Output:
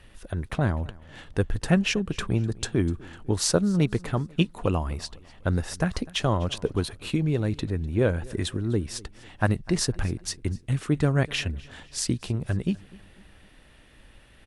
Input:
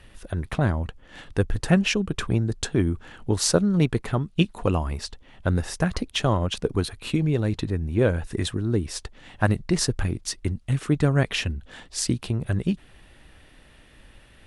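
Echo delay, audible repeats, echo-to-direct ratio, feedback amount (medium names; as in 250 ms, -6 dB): 250 ms, 2, -21.5 dB, 43%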